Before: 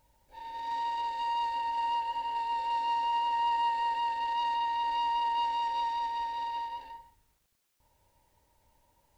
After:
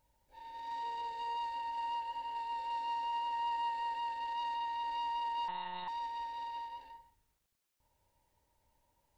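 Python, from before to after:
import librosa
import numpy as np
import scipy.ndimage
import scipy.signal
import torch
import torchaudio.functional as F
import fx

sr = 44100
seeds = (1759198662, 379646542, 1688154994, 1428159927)

y = fx.octave_divider(x, sr, octaves=1, level_db=2.0, at=(0.82, 1.37))
y = fx.lpc_monotone(y, sr, seeds[0], pitch_hz=180.0, order=10, at=(5.48, 5.88))
y = y * librosa.db_to_amplitude(-7.0)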